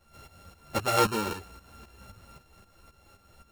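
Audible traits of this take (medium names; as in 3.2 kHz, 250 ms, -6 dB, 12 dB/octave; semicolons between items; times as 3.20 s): a buzz of ramps at a fixed pitch in blocks of 32 samples; tremolo saw up 3.8 Hz, depth 75%; a shimmering, thickened sound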